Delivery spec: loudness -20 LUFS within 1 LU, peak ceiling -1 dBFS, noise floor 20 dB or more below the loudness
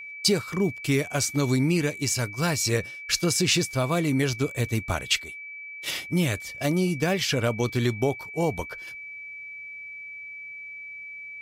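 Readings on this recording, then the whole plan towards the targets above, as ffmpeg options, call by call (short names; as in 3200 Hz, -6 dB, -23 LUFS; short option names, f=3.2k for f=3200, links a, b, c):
steady tone 2300 Hz; tone level -37 dBFS; loudness -25.5 LUFS; peak -8.5 dBFS; loudness target -20.0 LUFS
-> -af "bandreject=f=2.3k:w=30"
-af "volume=5.5dB"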